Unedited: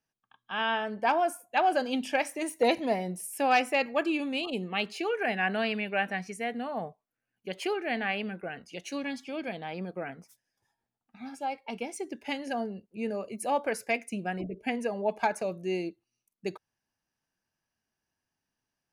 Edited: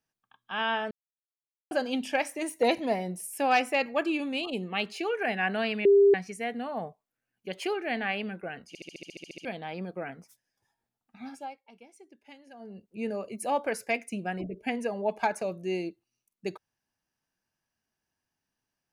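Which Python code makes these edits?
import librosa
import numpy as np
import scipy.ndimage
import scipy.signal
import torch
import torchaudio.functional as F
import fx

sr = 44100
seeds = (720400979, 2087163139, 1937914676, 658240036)

y = fx.edit(x, sr, fx.silence(start_s=0.91, length_s=0.8),
    fx.bleep(start_s=5.85, length_s=0.29, hz=400.0, db=-15.0),
    fx.stutter_over(start_s=8.68, slice_s=0.07, count=11),
    fx.fade_down_up(start_s=11.29, length_s=1.59, db=-17.5, fade_s=0.29), tone=tone)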